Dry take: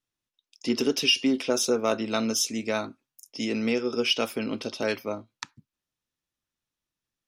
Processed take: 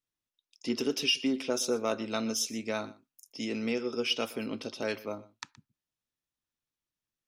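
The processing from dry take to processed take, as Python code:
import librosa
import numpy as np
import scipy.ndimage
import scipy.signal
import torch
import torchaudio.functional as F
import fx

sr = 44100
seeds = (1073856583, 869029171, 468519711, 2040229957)

y = x + 10.0 ** (-19.5 / 20.0) * np.pad(x, (int(121 * sr / 1000.0), 0))[:len(x)]
y = y * 10.0 ** (-5.5 / 20.0)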